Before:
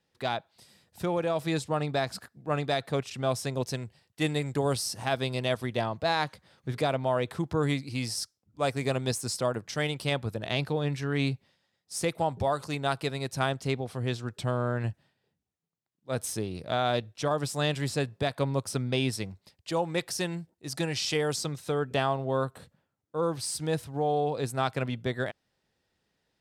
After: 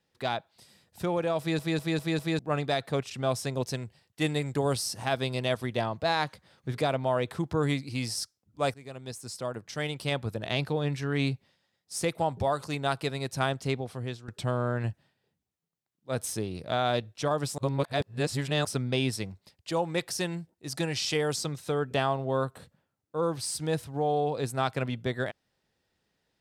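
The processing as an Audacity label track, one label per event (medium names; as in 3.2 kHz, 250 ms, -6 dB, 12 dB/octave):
1.390000	1.390000	stutter in place 0.20 s, 5 plays
8.740000	10.320000	fade in, from -20 dB
13.610000	14.280000	fade out equal-power, to -13.5 dB
17.580000	18.650000	reverse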